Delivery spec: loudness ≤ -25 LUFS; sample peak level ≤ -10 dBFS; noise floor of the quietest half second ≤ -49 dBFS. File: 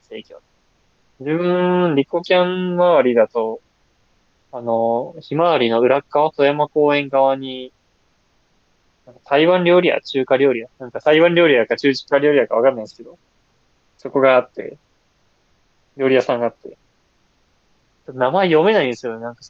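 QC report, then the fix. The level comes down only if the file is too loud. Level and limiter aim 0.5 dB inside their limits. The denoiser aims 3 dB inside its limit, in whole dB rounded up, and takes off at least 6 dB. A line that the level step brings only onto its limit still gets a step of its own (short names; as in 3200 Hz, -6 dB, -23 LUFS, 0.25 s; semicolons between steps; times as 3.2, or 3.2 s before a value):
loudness -16.5 LUFS: fail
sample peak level -4.0 dBFS: fail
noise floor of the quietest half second -61 dBFS: OK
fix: gain -9 dB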